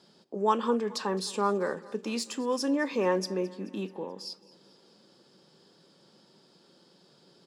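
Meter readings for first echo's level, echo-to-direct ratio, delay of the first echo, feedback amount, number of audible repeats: −21.0 dB, −19.0 dB, 216 ms, 58%, 3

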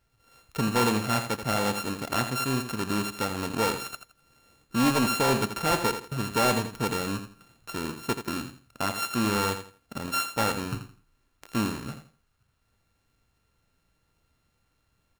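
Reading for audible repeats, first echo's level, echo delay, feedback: 3, −9.5 dB, 83 ms, 25%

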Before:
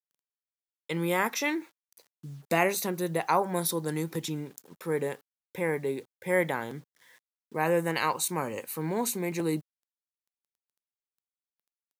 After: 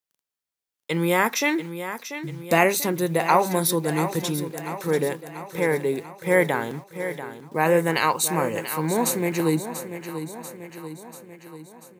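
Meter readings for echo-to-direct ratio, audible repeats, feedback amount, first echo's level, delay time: −9.5 dB, 5, 57%, −11.0 dB, 689 ms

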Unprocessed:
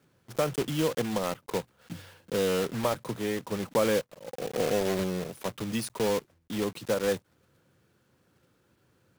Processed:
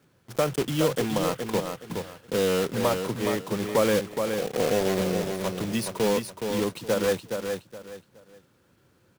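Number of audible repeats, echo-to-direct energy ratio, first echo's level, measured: 3, −5.5 dB, −6.0 dB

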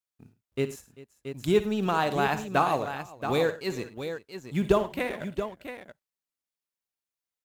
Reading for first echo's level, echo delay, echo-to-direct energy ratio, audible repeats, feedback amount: −14.5 dB, 56 ms, −7.0 dB, 4, repeats not evenly spaced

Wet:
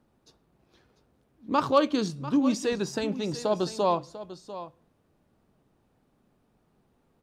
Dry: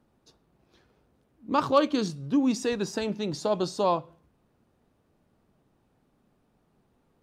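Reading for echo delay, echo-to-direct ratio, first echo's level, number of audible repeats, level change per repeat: 695 ms, −14.0 dB, −14.0 dB, 1, repeats not evenly spaced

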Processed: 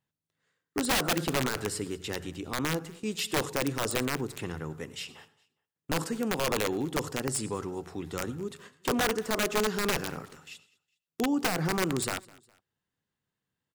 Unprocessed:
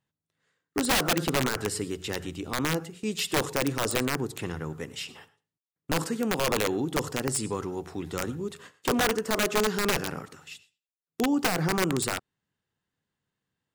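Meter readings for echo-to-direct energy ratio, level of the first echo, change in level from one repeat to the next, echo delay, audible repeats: −23.0 dB, −23.5 dB, −8.5 dB, 205 ms, 2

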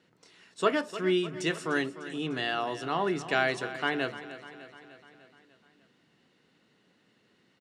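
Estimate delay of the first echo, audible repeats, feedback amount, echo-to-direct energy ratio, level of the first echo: 300 ms, 5, 59%, −12.0 dB, −14.0 dB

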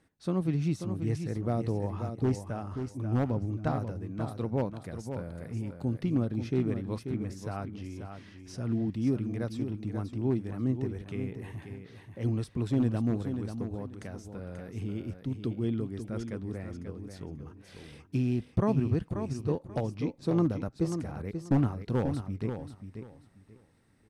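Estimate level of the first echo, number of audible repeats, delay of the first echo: −8.0 dB, 3, 536 ms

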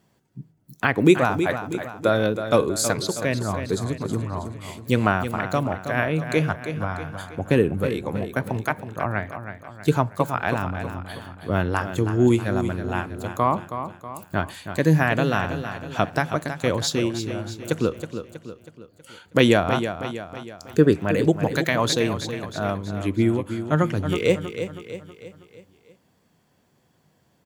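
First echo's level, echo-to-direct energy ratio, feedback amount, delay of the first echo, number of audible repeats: −9.5 dB, −8.5 dB, 49%, 321 ms, 5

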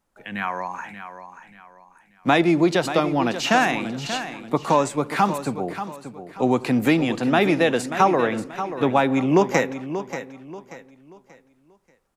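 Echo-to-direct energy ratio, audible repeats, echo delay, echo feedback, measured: −10.5 dB, 3, 584 ms, 33%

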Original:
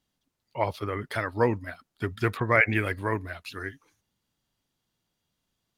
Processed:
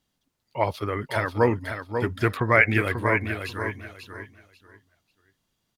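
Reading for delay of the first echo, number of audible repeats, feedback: 540 ms, 3, 22%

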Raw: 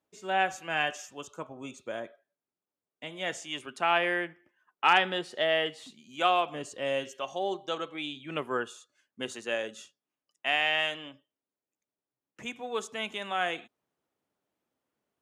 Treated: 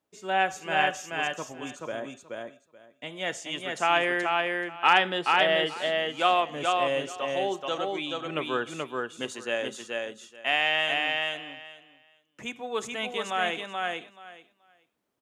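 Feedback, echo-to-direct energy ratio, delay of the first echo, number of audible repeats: 16%, −3.0 dB, 430 ms, 3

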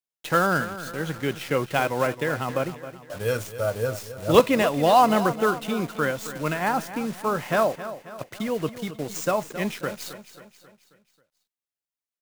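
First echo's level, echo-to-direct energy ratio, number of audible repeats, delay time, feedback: −13.5 dB, −12.5 dB, 4, 269 ms, 50%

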